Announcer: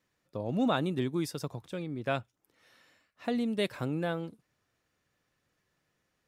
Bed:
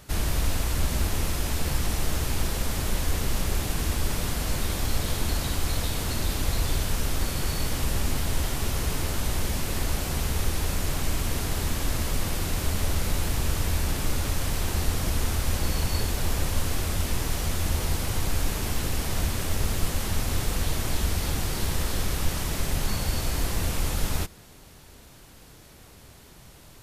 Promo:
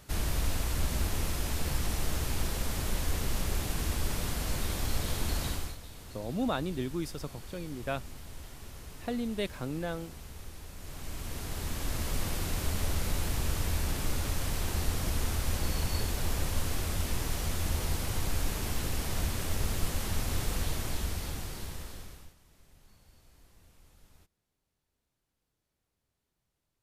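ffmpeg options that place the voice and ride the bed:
ffmpeg -i stem1.wav -i stem2.wav -filter_complex "[0:a]adelay=5800,volume=-3dB[link_01];[1:a]volume=9dB,afade=type=out:start_time=5.48:duration=0.29:silence=0.199526,afade=type=in:start_time=10.75:duration=1.45:silence=0.199526,afade=type=out:start_time=20.56:duration=1.79:silence=0.0375837[link_02];[link_01][link_02]amix=inputs=2:normalize=0" out.wav

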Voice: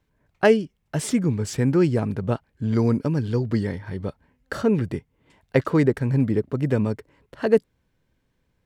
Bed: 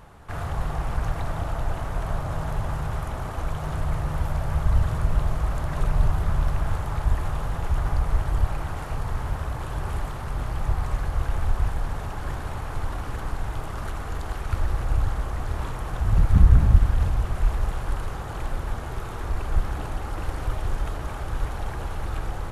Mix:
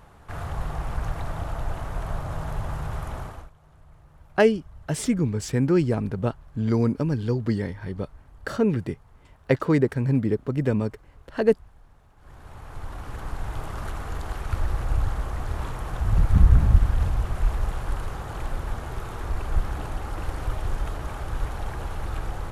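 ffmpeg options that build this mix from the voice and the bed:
ffmpeg -i stem1.wav -i stem2.wav -filter_complex "[0:a]adelay=3950,volume=-1.5dB[link_01];[1:a]volume=22.5dB,afade=type=out:start_time=3.18:duration=0.32:silence=0.0668344,afade=type=in:start_time=12.16:duration=1.47:silence=0.0562341[link_02];[link_01][link_02]amix=inputs=2:normalize=0" out.wav

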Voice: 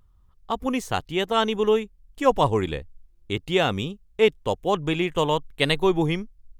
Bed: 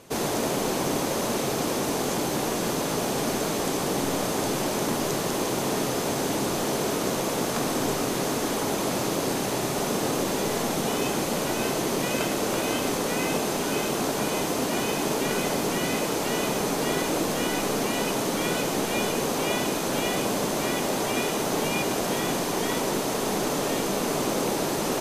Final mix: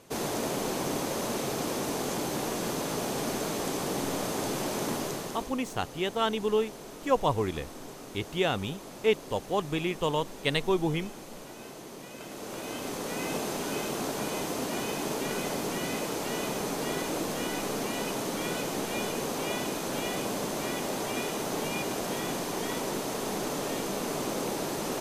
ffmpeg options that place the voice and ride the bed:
ffmpeg -i stem1.wav -i stem2.wav -filter_complex "[0:a]adelay=4850,volume=-6dB[link_01];[1:a]volume=7dB,afade=type=out:start_time=4.93:duration=0.61:silence=0.223872,afade=type=in:start_time=12.16:duration=1.23:silence=0.251189[link_02];[link_01][link_02]amix=inputs=2:normalize=0" out.wav

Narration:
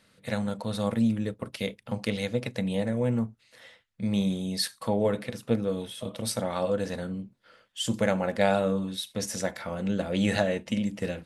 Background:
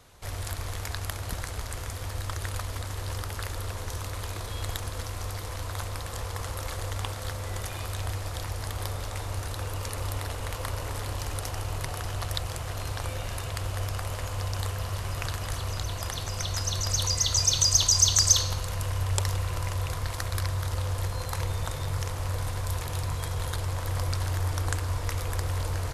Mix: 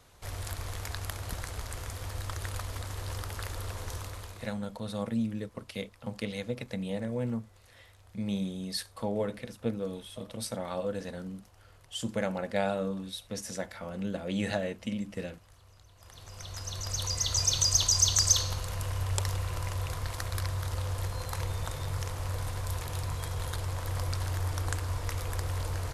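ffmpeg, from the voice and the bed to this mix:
ffmpeg -i stem1.wav -i stem2.wav -filter_complex "[0:a]adelay=4150,volume=-6dB[link_01];[1:a]volume=19dB,afade=type=out:start_time=3.93:duration=0.65:silence=0.0749894,afade=type=in:start_time=15.95:duration=1.48:silence=0.0749894[link_02];[link_01][link_02]amix=inputs=2:normalize=0" out.wav

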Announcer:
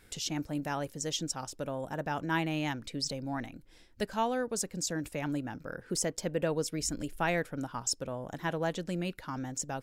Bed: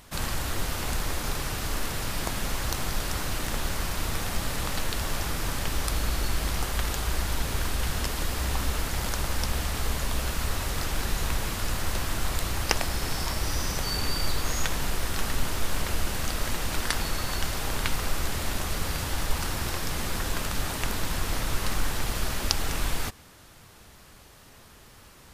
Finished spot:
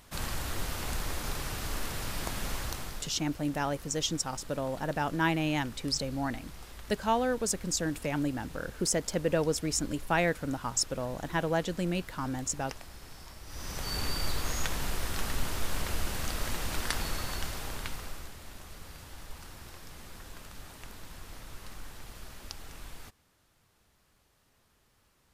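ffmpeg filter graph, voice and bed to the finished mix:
ffmpeg -i stem1.wav -i stem2.wav -filter_complex "[0:a]adelay=2900,volume=3dB[link_01];[1:a]volume=9.5dB,afade=type=out:start_time=2.55:duration=0.59:silence=0.199526,afade=type=in:start_time=13.46:duration=0.52:silence=0.188365,afade=type=out:start_time=17.1:duration=1.25:silence=0.223872[link_02];[link_01][link_02]amix=inputs=2:normalize=0" out.wav

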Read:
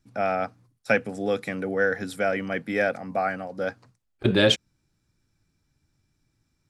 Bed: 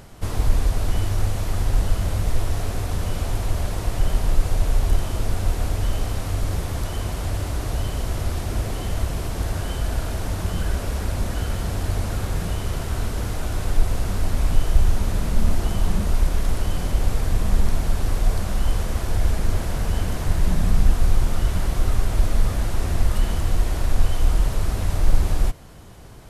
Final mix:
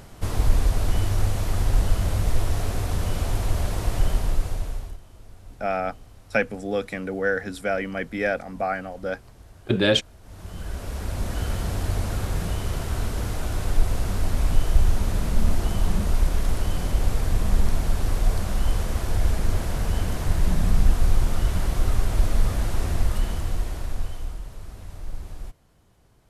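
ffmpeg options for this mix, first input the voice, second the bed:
ffmpeg -i stem1.wav -i stem2.wav -filter_complex "[0:a]adelay=5450,volume=-0.5dB[link_01];[1:a]volume=21dB,afade=type=out:start_time=3.98:duration=1:silence=0.0749894,afade=type=in:start_time=10.22:duration=1.26:silence=0.0841395,afade=type=out:start_time=22.78:duration=1.63:silence=0.177828[link_02];[link_01][link_02]amix=inputs=2:normalize=0" out.wav

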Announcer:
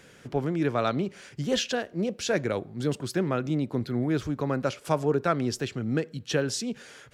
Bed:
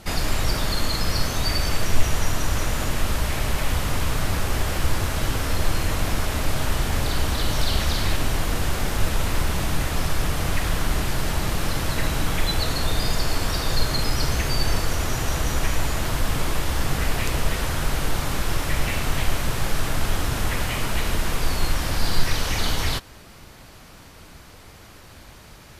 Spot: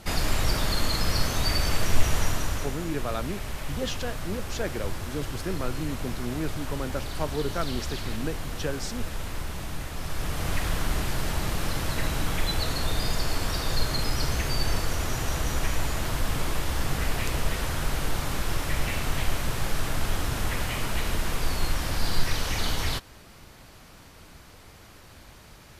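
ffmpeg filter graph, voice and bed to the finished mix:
ffmpeg -i stem1.wav -i stem2.wav -filter_complex "[0:a]adelay=2300,volume=-5.5dB[link_01];[1:a]volume=4.5dB,afade=type=out:start_time=2.21:duration=0.56:silence=0.375837,afade=type=in:start_time=9.98:duration=0.56:silence=0.473151[link_02];[link_01][link_02]amix=inputs=2:normalize=0" out.wav

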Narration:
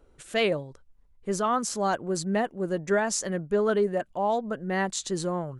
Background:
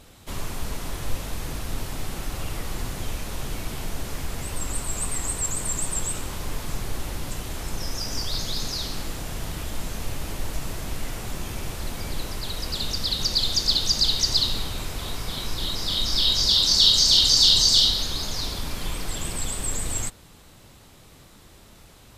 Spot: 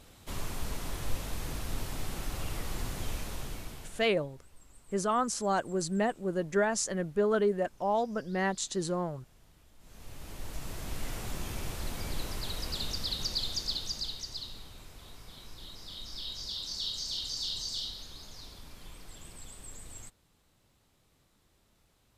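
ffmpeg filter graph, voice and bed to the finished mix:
ffmpeg -i stem1.wav -i stem2.wav -filter_complex "[0:a]adelay=3650,volume=-3dB[link_01];[1:a]volume=18.5dB,afade=type=out:start_time=3.18:duration=0.93:silence=0.0630957,afade=type=in:start_time=9.79:duration=1.34:silence=0.0630957,afade=type=out:start_time=12.42:duration=1.86:silence=0.211349[link_02];[link_01][link_02]amix=inputs=2:normalize=0" out.wav

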